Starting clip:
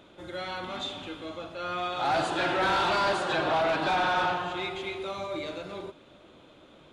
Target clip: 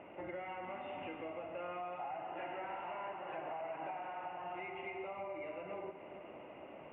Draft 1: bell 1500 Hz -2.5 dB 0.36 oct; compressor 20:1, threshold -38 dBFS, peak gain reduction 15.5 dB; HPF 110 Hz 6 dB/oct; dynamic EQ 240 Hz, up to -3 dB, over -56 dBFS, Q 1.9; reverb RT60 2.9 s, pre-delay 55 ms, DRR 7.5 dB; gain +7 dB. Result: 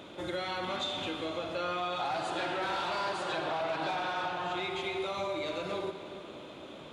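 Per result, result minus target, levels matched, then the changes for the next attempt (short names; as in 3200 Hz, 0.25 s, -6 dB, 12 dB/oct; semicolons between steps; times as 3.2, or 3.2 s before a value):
4000 Hz band +11.5 dB; compressor: peak gain reduction -9 dB
add first: rippled Chebyshev low-pass 2900 Hz, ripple 9 dB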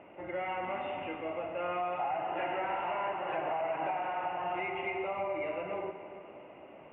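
compressor: peak gain reduction -9.5 dB
change: compressor 20:1, threshold -48 dBFS, peak gain reduction 24.5 dB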